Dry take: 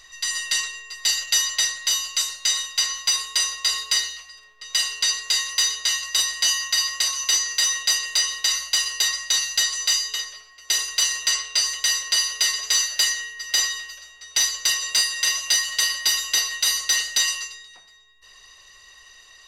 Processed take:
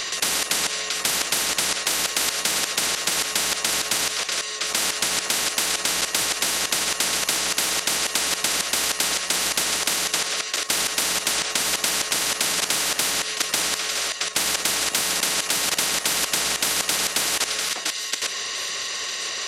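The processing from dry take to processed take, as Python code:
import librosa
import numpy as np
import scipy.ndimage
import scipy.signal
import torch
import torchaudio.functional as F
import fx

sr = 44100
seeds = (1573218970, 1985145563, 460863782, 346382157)

p1 = fx.bandpass_edges(x, sr, low_hz=240.0, high_hz=6700.0)
p2 = fx.over_compress(p1, sr, threshold_db=-24.0, ratio=-0.5)
p3 = p1 + F.gain(torch.from_numpy(p2), -2.0).numpy()
p4 = fx.peak_eq(p3, sr, hz=920.0, db=-9.0, octaves=0.9)
p5 = fx.echo_feedback(p4, sr, ms=962, feedback_pct=40, wet_db=-21.5)
p6 = fx.level_steps(p5, sr, step_db=13)
p7 = fx.spectral_comp(p6, sr, ratio=10.0)
y = F.gain(torch.from_numpy(p7), 7.5).numpy()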